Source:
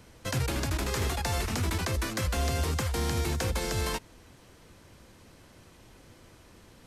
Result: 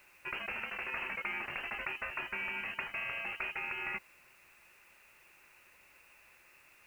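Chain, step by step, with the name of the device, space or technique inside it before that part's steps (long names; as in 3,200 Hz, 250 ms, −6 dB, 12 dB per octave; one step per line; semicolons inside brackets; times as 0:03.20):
scrambled radio voice (band-pass filter 360–2,800 Hz; voice inversion scrambler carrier 3,000 Hz; white noise bed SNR 27 dB)
level −3 dB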